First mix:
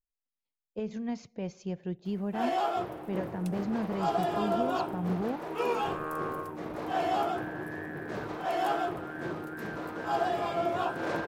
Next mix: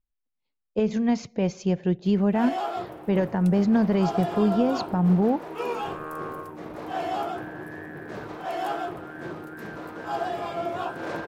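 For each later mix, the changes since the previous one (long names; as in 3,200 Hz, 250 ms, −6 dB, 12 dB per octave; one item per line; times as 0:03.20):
speech +11.5 dB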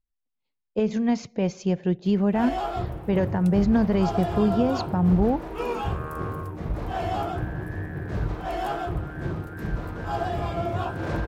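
first sound: remove high-pass filter 300 Hz 12 dB per octave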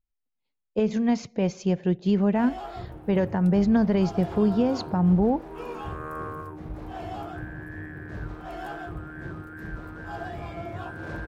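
first sound −8.5 dB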